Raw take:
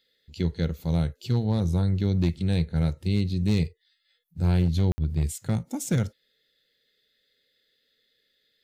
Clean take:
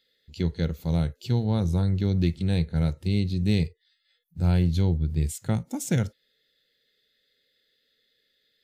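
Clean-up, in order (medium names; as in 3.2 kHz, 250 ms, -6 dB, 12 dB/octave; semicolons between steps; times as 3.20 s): clip repair -16 dBFS; room tone fill 4.92–4.98 s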